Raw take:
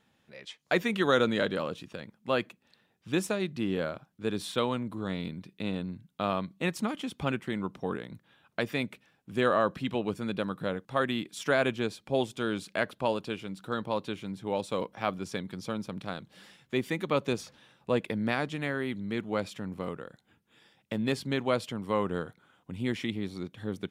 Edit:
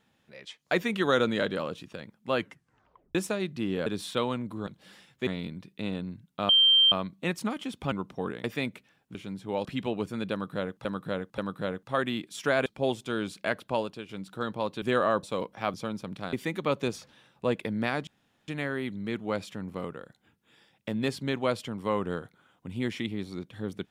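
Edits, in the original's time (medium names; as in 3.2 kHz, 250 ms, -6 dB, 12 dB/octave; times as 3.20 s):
2.37 s: tape stop 0.78 s
3.86–4.27 s: delete
6.30 s: add tone 3.15 kHz -16.5 dBFS 0.43 s
7.30–7.57 s: delete
8.09–8.61 s: delete
9.32–9.73 s: swap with 14.13–14.63 s
10.40–10.93 s: loop, 3 plays
11.68–11.97 s: delete
13.06–13.40 s: fade out, to -9 dB
15.14–15.59 s: delete
16.18–16.78 s: move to 5.08 s
18.52 s: insert room tone 0.41 s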